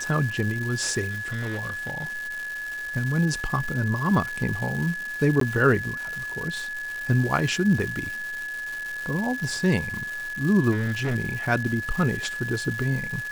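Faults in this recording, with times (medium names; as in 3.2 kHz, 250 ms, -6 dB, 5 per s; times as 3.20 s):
crackle 510 per s -31 dBFS
whine 1.7 kHz -30 dBFS
1.10–2.19 s: clipped -26 dBFS
5.40–5.41 s: dropout 13 ms
10.71–11.16 s: clipped -22 dBFS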